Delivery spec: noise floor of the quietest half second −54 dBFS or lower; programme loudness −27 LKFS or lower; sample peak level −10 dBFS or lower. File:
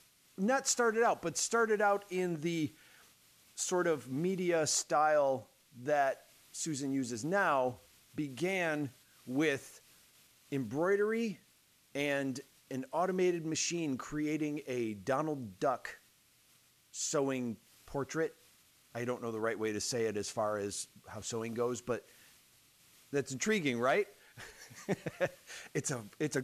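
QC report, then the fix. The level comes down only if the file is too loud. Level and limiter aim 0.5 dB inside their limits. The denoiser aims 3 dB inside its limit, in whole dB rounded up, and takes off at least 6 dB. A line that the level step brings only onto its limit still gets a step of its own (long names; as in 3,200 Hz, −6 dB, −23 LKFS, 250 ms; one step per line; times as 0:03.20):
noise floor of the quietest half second −68 dBFS: in spec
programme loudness −34.5 LKFS: in spec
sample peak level −18.0 dBFS: in spec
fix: no processing needed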